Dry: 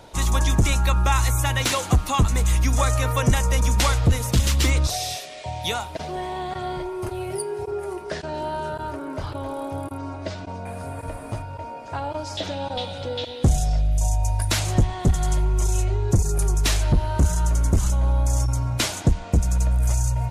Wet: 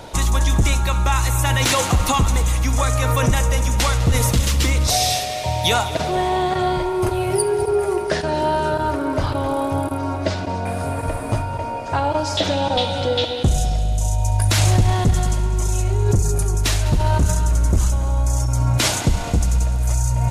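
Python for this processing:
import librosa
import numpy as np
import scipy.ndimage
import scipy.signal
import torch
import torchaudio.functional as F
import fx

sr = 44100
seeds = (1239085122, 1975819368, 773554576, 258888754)

p1 = fx.over_compress(x, sr, threshold_db=-25.0, ratio=-0.5)
p2 = x + F.gain(torch.from_numpy(p1), 0.0).numpy()
y = fx.echo_heads(p2, sr, ms=68, heads='first and third', feedback_pct=73, wet_db=-17.0)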